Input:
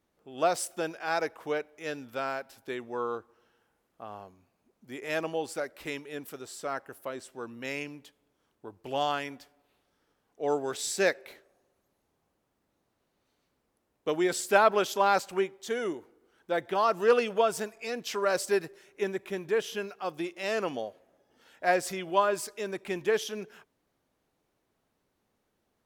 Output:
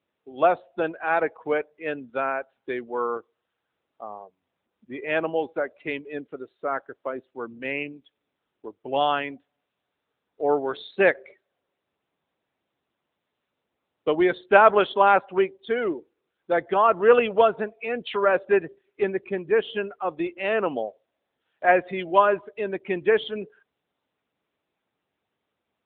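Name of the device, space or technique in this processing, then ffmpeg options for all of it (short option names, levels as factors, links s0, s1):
mobile call with aggressive noise cancelling: -af "highpass=f=170:p=1,afftdn=nr=21:nf=-42,volume=2.37" -ar 8000 -c:a libopencore_amrnb -b:a 10200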